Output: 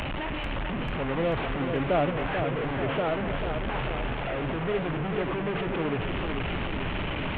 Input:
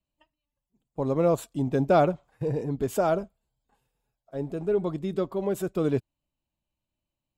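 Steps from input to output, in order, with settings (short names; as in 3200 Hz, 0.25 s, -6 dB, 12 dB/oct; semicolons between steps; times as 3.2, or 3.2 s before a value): delta modulation 16 kbps, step -20 dBFS; warbling echo 0.441 s, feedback 63%, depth 72 cents, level -6.5 dB; gain -5 dB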